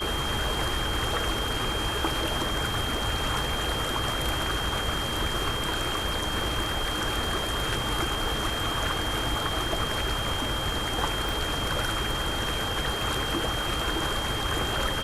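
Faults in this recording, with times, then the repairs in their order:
crackle 28 per s -34 dBFS
whine 3.2 kHz -32 dBFS
11.29 s: pop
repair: de-click; band-stop 3.2 kHz, Q 30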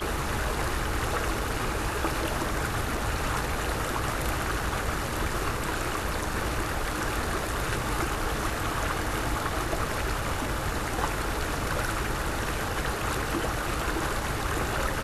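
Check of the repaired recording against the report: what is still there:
nothing left

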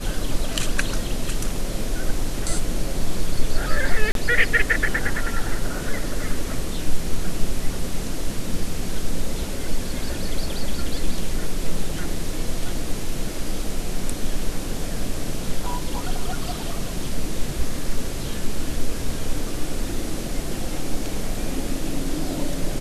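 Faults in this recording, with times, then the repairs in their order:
4.12–4.15 s: dropout 32 ms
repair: interpolate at 4.12 s, 32 ms

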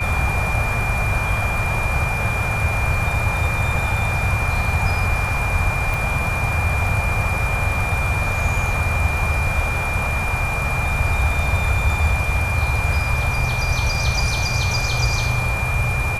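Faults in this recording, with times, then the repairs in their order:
whine 2.4 kHz -24 dBFS
5.94 s: pop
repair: de-click; band-stop 2.4 kHz, Q 30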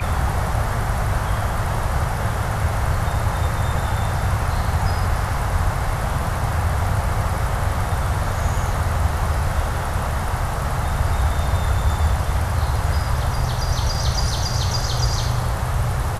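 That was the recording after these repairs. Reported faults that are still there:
nothing left

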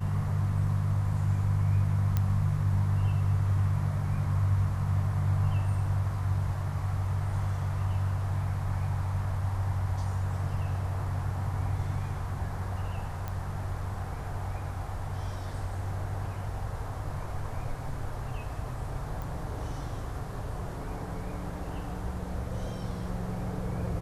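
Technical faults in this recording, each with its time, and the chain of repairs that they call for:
2.17 s: pop -15 dBFS
13.28 s: pop -22 dBFS
19.22 s: pop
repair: de-click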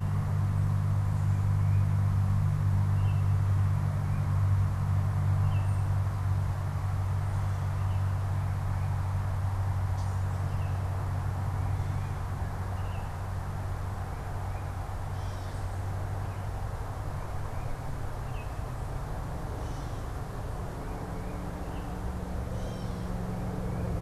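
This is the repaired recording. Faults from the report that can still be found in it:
13.28 s: pop

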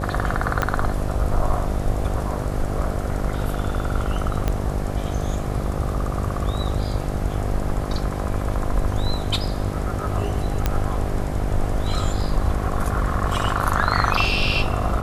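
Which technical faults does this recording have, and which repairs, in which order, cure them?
buzz 50 Hz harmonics 16 -27 dBFS
0.62 s: pop -7 dBFS
4.48 s: pop -9 dBFS
10.66 s: pop -6 dBFS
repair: de-click; de-hum 50 Hz, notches 16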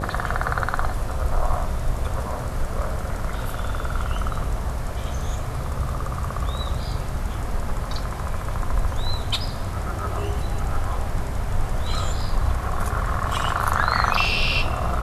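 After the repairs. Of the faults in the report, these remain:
0.62 s: pop
4.48 s: pop

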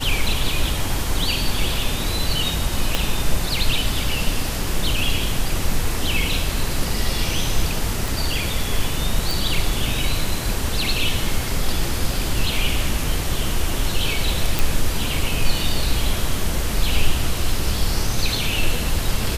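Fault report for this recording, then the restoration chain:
2.95 s: pop -4 dBFS
8.08 s: pop
9.31 s: pop
14.59 s: pop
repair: de-click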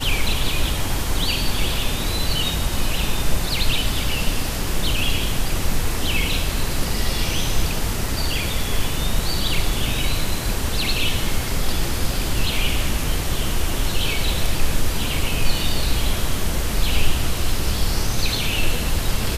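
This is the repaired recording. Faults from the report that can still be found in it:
2.95 s: pop

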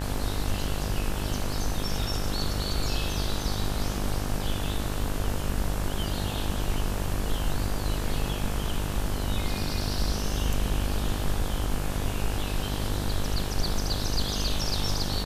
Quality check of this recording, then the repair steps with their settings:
buzz 50 Hz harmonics 36 -32 dBFS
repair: de-hum 50 Hz, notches 36

